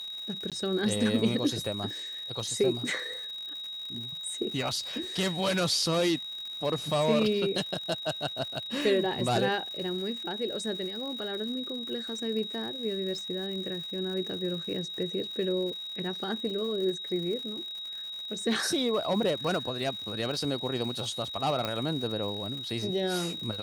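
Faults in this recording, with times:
crackle 180 per s -38 dBFS
whine 3.8 kHz -36 dBFS
0.50–0.52 s: dropout 17 ms
21.65 s: pop -17 dBFS

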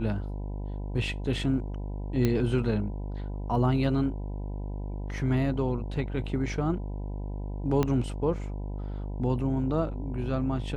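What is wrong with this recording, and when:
buzz 50 Hz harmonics 20 -34 dBFS
2.25 s: pop -13 dBFS
7.83 s: pop -13 dBFS

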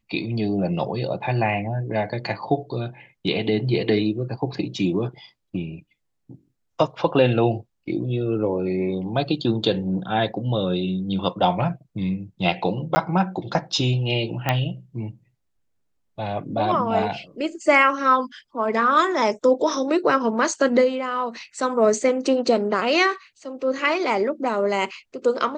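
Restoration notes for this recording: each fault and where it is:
12.95–12.96 s: dropout 10 ms
14.49 s: pop -7 dBFS

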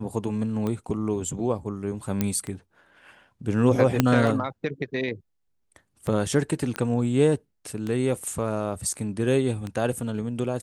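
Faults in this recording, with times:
tick 33 1/3 rpm -18 dBFS
2.21 s: pop -10 dBFS
4.00 s: pop -4 dBFS
6.76 s: pop -14 dBFS

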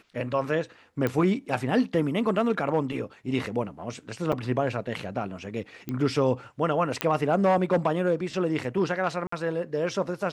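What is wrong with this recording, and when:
1.07 s: pop -14 dBFS
4.32–4.33 s: dropout 5.5 ms
5.89 s: pop -19 dBFS
7.01 s: pop -7 dBFS
9.27–9.32 s: dropout 54 ms

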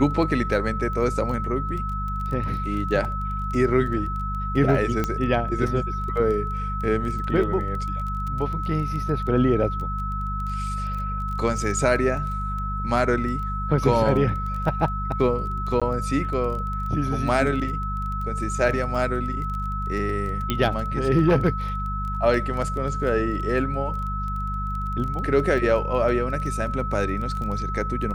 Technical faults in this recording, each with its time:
crackle 15 per s -30 dBFS
hum 50 Hz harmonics 4 -29 dBFS
whine 1.3 kHz -29 dBFS
5.04 s: pop -11 dBFS
15.80–15.82 s: dropout 16 ms
20.50 s: pop -9 dBFS

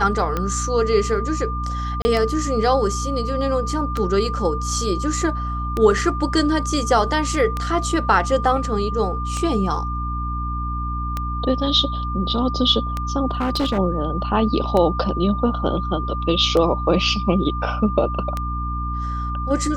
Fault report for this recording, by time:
hum 60 Hz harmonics 5 -26 dBFS
tick 33 1/3 rpm -10 dBFS
whine 1.2 kHz -27 dBFS
2.02–2.05 s: dropout 30 ms
13.31–13.79 s: clipped -17 dBFS

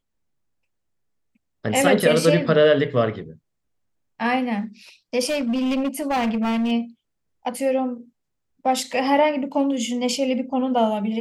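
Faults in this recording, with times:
5.29–6.72 s: clipped -19 dBFS

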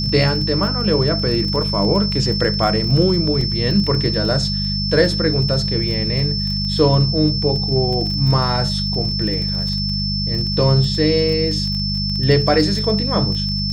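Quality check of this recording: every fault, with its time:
crackle 24 per s -24 dBFS
hum 50 Hz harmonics 4 -23 dBFS
whine 5.3 kHz -22 dBFS
3.41 s: dropout 2.4 ms

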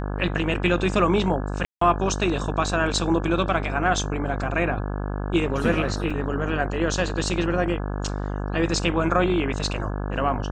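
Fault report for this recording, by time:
buzz 50 Hz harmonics 34 -28 dBFS
1.65–1.81 s: dropout 164 ms
6.10–6.11 s: dropout 5.3 ms

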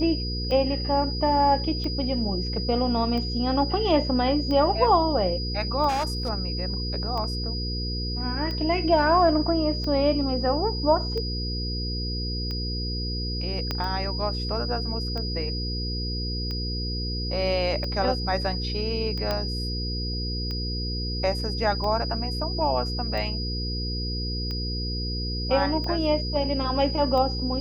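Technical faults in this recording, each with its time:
hum 60 Hz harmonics 8 -30 dBFS
tick 45 rpm -21 dBFS
whine 4.9 kHz -32 dBFS
5.88–6.30 s: clipped -22.5 dBFS
13.71 s: pop -13 dBFS
19.31 s: pop -13 dBFS

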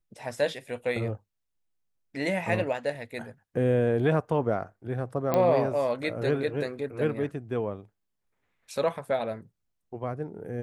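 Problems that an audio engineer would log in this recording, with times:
5.34 s: pop -12 dBFS

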